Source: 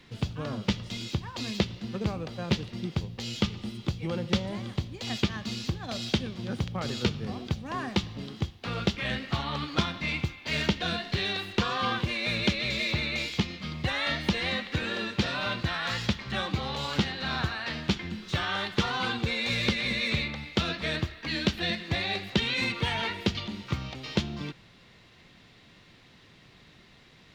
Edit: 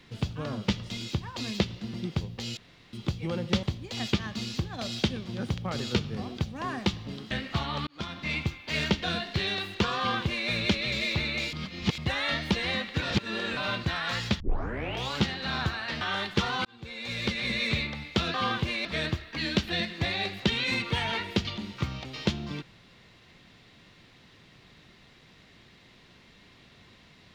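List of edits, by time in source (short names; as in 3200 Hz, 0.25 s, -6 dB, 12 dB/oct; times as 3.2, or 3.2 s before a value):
1.94–2.74 cut
3.37–3.73 room tone
4.43–4.73 cut
8.41–9.09 cut
9.65–10.11 fade in
11.75–12.26 copy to 20.75
13.31–13.76 reverse
14.8–15.35 reverse
16.18 tape start 0.71 s
17.79–18.42 cut
19.06–19.98 fade in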